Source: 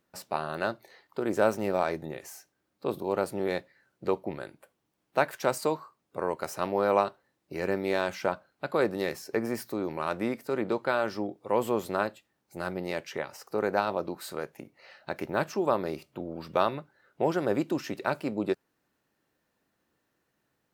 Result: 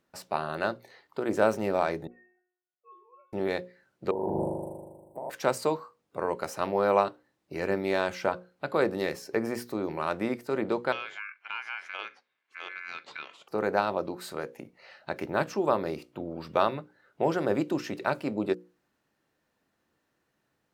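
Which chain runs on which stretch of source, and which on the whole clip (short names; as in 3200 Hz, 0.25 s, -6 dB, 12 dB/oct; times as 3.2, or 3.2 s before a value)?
2.07–3.33 sine-wave speech + metallic resonator 360 Hz, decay 0.59 s, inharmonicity 0.002
4.11–5.3 Chebyshev band-stop 950–8100 Hz, order 5 + flutter echo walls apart 6.8 m, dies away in 1.4 s + negative-ratio compressor -32 dBFS
10.92–13.48 ring modulator 1900 Hz + BPF 290–4100 Hz + compressor 2:1, threshold -38 dBFS
whole clip: high shelf 11000 Hz -8 dB; notches 60/120/180/240/300/360/420/480/540 Hz; gain +1 dB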